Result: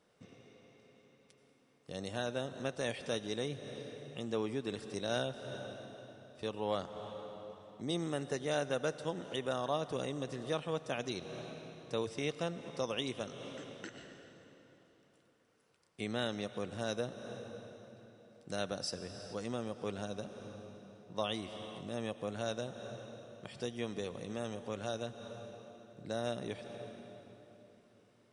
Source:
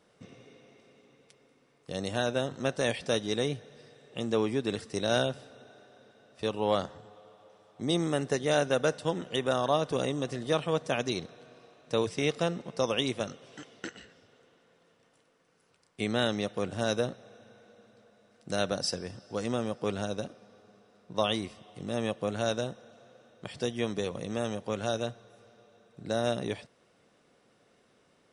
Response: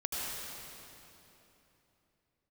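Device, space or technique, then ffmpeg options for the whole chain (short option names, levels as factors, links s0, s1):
ducked reverb: -filter_complex "[0:a]asplit=3[s0][s1][s2];[1:a]atrim=start_sample=2205[s3];[s1][s3]afir=irnorm=-1:irlink=0[s4];[s2]apad=whole_len=1249188[s5];[s4][s5]sidechaincompress=threshold=0.0112:ratio=4:attack=8:release=207,volume=0.398[s6];[s0][s6]amix=inputs=2:normalize=0,volume=0.376"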